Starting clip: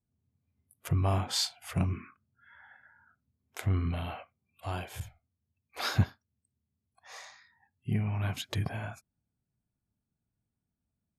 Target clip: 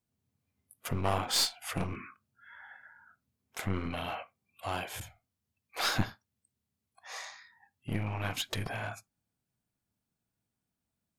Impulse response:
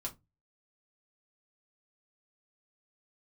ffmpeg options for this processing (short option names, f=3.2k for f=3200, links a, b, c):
-filter_complex "[0:a]aeval=exprs='clip(val(0),-1,0.0178)':c=same,lowshelf=f=260:g=-10.5,asplit=2[a][b];[1:a]atrim=start_sample=2205,afade=t=out:st=0.14:d=0.01,atrim=end_sample=6615,asetrate=36162,aresample=44100[c];[b][c]afir=irnorm=-1:irlink=0,volume=-15dB[d];[a][d]amix=inputs=2:normalize=0,volume=4dB"